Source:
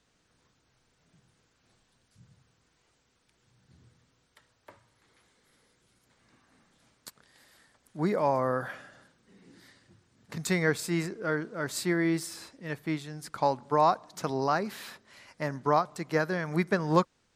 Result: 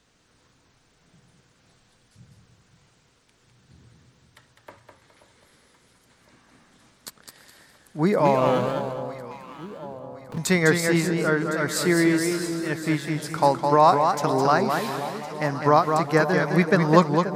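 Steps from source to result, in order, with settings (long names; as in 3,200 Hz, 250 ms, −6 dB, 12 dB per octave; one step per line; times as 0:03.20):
0:08.25–0:10.38: running median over 25 samples
delay that swaps between a low-pass and a high-pass 530 ms, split 980 Hz, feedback 67%, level −11 dB
feedback echo with a swinging delay time 207 ms, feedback 31%, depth 103 cents, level −5.5 dB
level +7 dB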